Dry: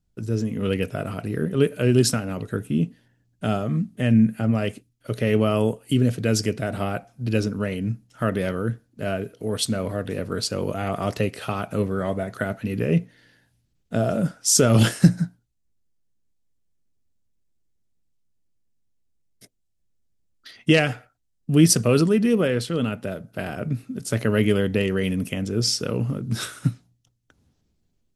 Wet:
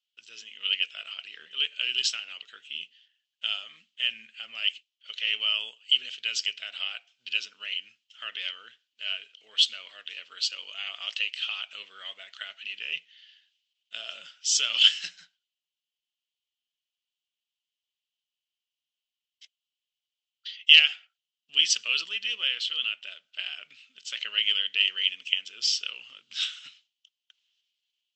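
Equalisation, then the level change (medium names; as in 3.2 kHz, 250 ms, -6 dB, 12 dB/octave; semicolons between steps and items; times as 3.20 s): resonant high-pass 3 kHz, resonance Q 7.8; brick-wall FIR low-pass 8.1 kHz; distance through air 88 m; -1.0 dB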